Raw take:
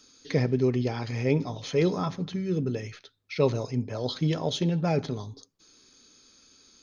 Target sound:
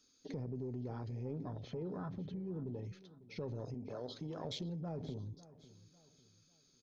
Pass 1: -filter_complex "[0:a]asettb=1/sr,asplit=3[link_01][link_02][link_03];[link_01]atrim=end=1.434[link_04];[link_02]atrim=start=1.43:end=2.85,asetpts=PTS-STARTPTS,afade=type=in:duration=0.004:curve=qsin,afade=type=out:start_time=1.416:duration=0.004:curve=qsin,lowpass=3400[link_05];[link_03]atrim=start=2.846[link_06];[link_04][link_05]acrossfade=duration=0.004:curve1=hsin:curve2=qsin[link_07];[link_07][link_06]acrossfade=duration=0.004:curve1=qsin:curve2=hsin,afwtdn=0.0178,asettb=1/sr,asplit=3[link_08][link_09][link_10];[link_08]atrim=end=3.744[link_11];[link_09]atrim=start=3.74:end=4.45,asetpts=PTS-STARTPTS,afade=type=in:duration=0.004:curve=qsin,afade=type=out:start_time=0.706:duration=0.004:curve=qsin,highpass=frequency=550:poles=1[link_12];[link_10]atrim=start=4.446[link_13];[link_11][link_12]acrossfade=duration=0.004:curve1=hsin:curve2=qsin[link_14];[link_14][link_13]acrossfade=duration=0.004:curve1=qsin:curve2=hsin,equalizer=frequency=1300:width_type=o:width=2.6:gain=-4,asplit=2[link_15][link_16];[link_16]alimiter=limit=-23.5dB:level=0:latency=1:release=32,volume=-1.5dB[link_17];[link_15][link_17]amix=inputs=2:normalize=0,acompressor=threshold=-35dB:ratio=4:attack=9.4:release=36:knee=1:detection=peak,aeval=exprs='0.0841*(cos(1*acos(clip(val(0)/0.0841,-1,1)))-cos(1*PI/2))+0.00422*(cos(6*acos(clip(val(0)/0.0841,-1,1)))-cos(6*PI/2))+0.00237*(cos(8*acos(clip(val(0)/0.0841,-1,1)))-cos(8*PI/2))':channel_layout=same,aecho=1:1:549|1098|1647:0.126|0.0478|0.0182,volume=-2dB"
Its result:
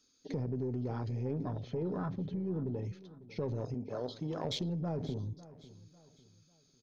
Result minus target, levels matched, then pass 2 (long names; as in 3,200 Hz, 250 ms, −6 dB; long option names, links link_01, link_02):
downward compressor: peak gain reduction −6.5 dB
-filter_complex "[0:a]asettb=1/sr,asplit=3[link_01][link_02][link_03];[link_01]atrim=end=1.434[link_04];[link_02]atrim=start=1.43:end=2.85,asetpts=PTS-STARTPTS,afade=type=in:duration=0.004:curve=qsin,afade=type=out:start_time=1.416:duration=0.004:curve=qsin,lowpass=3400[link_05];[link_03]atrim=start=2.846[link_06];[link_04][link_05]acrossfade=duration=0.004:curve1=hsin:curve2=qsin[link_07];[link_07][link_06]acrossfade=duration=0.004:curve1=qsin:curve2=hsin,afwtdn=0.0178,asettb=1/sr,asplit=3[link_08][link_09][link_10];[link_08]atrim=end=3.744[link_11];[link_09]atrim=start=3.74:end=4.45,asetpts=PTS-STARTPTS,afade=type=in:duration=0.004:curve=qsin,afade=type=out:start_time=0.706:duration=0.004:curve=qsin,highpass=frequency=550:poles=1[link_12];[link_10]atrim=start=4.446[link_13];[link_11][link_12]acrossfade=duration=0.004:curve1=hsin:curve2=qsin[link_14];[link_14][link_13]acrossfade=duration=0.004:curve1=qsin:curve2=hsin,equalizer=frequency=1300:width_type=o:width=2.6:gain=-4,asplit=2[link_15][link_16];[link_16]alimiter=limit=-23.5dB:level=0:latency=1:release=32,volume=-1.5dB[link_17];[link_15][link_17]amix=inputs=2:normalize=0,acompressor=threshold=-43.5dB:ratio=4:attack=9.4:release=36:knee=1:detection=peak,aeval=exprs='0.0841*(cos(1*acos(clip(val(0)/0.0841,-1,1)))-cos(1*PI/2))+0.00422*(cos(6*acos(clip(val(0)/0.0841,-1,1)))-cos(6*PI/2))+0.00237*(cos(8*acos(clip(val(0)/0.0841,-1,1)))-cos(8*PI/2))':channel_layout=same,aecho=1:1:549|1098|1647:0.126|0.0478|0.0182,volume=-2dB"